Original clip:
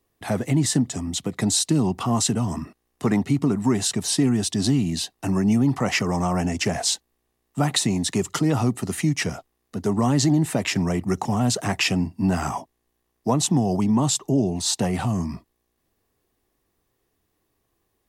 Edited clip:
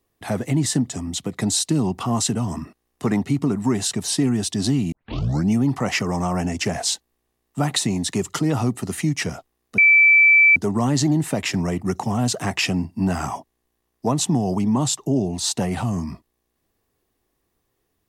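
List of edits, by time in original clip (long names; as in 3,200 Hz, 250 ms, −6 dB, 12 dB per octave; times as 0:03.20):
0:04.92: tape start 0.57 s
0:09.78: insert tone 2,320 Hz −9.5 dBFS 0.78 s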